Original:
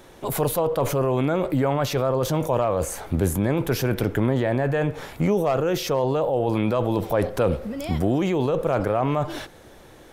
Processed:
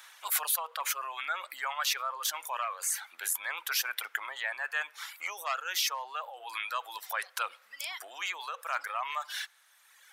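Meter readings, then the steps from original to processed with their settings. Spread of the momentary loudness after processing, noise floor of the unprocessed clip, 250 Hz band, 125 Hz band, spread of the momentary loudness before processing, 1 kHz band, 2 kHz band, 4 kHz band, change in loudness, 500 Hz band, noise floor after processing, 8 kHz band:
9 LU, -48 dBFS, under -40 dB, under -40 dB, 4 LU, -7.0 dB, +1.0 dB, +1.5 dB, -10.0 dB, -26.0 dB, -63 dBFS, +2.0 dB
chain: reverb removal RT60 1.7 s; HPF 1200 Hz 24 dB/oct; gain +2.5 dB

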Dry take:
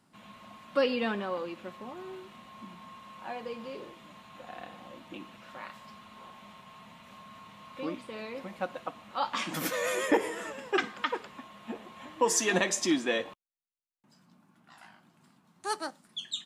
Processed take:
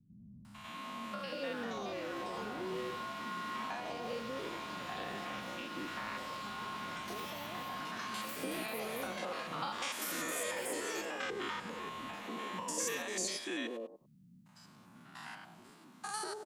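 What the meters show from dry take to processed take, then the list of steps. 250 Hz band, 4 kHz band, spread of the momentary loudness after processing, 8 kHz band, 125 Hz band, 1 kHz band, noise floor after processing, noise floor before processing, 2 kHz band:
-7.5 dB, -4.0 dB, 13 LU, -5.0 dB, -4.0 dB, -3.5 dB, -60 dBFS, -67 dBFS, -5.0 dB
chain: stepped spectrum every 0.1 s; dynamic EQ 9500 Hz, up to +7 dB, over -57 dBFS, Q 0.7; compressor 6:1, threshold -45 dBFS, peak gain reduction 19.5 dB; three bands offset in time lows, highs, mids 0.45/0.64 s, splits 200/650 Hz; echoes that change speed 0.783 s, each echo +5 st, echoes 2, each echo -6 dB; gain +9 dB

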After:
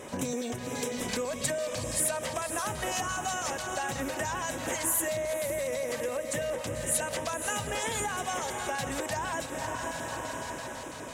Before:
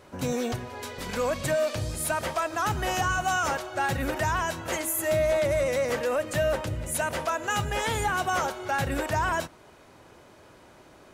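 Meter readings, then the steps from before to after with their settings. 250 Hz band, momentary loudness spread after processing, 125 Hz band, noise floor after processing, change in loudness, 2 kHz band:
-3.0 dB, 7 LU, -8.0 dB, -40 dBFS, -4.0 dB, -5.5 dB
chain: diffused feedback echo 0.523 s, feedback 40%, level -8 dB; LFO notch square 6 Hz 340–4400 Hz; graphic EQ 125/250/500/1000/2000/4000/8000 Hz +3/+10/+8/+4/+5/+6/+8 dB; compressor 6:1, threshold -32 dBFS, peak gain reduction 18 dB; high shelf 3600 Hz +9.5 dB; notch 1400 Hz, Q 11; Nellymoser 88 kbps 44100 Hz

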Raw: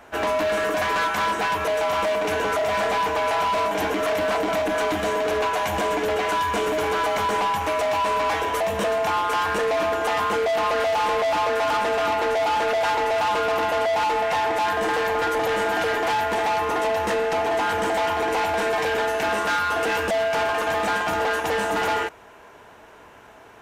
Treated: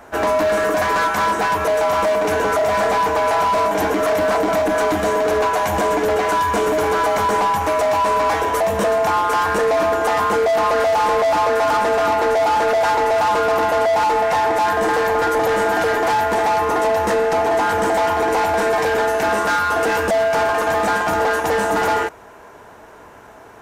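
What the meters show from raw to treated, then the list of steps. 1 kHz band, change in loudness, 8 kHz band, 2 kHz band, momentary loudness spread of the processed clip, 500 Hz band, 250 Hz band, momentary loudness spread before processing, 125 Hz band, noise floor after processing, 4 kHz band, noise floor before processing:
+5.5 dB, +5.0 dB, +5.0 dB, +3.5 dB, 2 LU, +6.0 dB, +6.0 dB, 2 LU, +6.0 dB, -42 dBFS, +0.5 dB, -47 dBFS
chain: bell 2900 Hz -7 dB 1.1 oct; gain +6 dB

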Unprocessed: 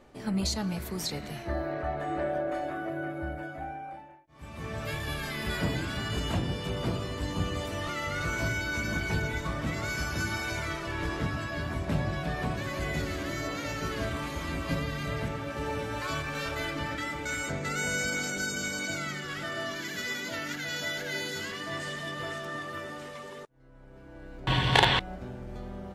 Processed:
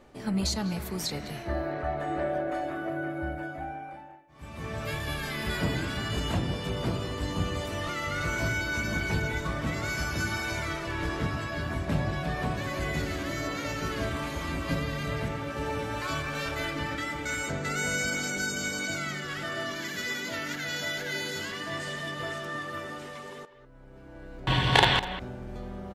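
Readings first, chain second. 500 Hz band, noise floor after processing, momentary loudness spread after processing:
+1.0 dB, -46 dBFS, 8 LU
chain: speakerphone echo 0.2 s, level -12 dB; gain +1 dB

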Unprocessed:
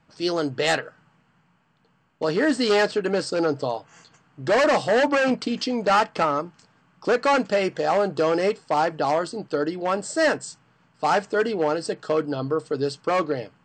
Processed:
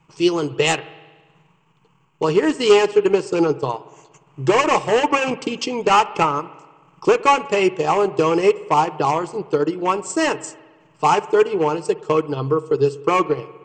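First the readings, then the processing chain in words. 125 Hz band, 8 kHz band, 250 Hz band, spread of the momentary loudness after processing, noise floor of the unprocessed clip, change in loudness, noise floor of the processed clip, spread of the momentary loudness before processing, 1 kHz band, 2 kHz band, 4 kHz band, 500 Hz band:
+6.0 dB, +5.5 dB, +3.5 dB, 8 LU, -64 dBFS, +4.5 dB, -58 dBFS, 8 LU, +5.5 dB, +1.0 dB, +3.5 dB, +4.5 dB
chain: ripple EQ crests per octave 0.72, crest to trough 12 dB; transient shaper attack +3 dB, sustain -9 dB; spring tank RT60 1.4 s, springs 59 ms, chirp 65 ms, DRR 17 dB; gain +2.5 dB

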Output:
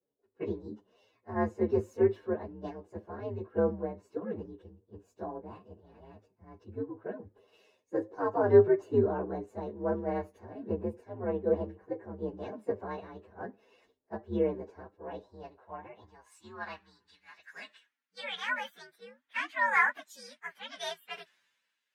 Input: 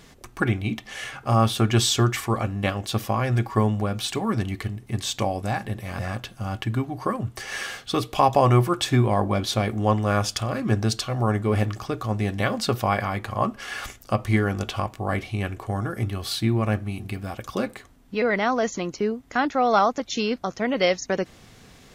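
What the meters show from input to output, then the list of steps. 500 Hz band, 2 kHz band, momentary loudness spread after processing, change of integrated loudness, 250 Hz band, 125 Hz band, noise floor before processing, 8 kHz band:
-4.5 dB, -6.0 dB, 20 LU, -7.5 dB, -11.0 dB, -19.0 dB, -50 dBFS, under -20 dB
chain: inharmonic rescaling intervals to 125%; band-pass sweep 430 Hz -> 1700 Hz, 14.83–17.15; three-band expander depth 70%

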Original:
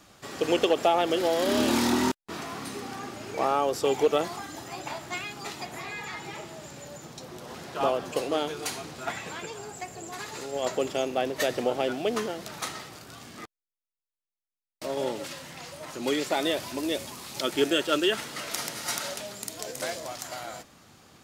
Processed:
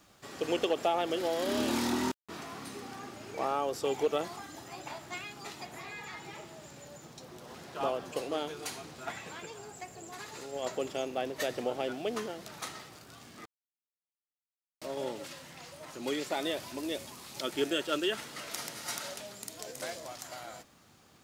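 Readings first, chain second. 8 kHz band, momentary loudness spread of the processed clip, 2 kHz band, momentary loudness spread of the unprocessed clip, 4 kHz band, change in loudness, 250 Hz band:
-6.5 dB, 17 LU, -6.5 dB, 17 LU, -6.5 dB, -6.5 dB, -6.5 dB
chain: bit-crush 11-bit; gain -6.5 dB

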